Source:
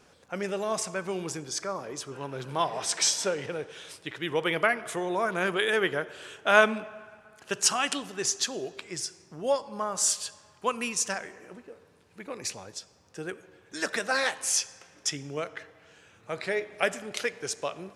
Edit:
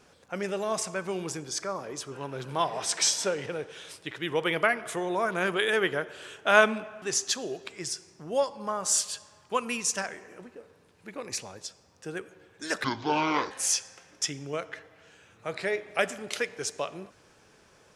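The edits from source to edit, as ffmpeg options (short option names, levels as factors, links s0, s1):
-filter_complex "[0:a]asplit=4[s0][s1][s2][s3];[s0]atrim=end=7.022[s4];[s1]atrim=start=8.138:end=13.964[s5];[s2]atrim=start=13.96:end=14.35,asetpts=PTS-STARTPTS,asetrate=25578,aresample=44100,atrim=end_sample=29653,asetpts=PTS-STARTPTS[s6];[s3]atrim=start=14.346[s7];[s4][s5]acrossfade=d=0.004:c1=hsin:c2=hsin[s8];[s8][s6]acrossfade=d=0.004:c1=hsin:c2=hsin[s9];[s9][s7]acrossfade=d=0.004:c1=hsin:c2=hsin"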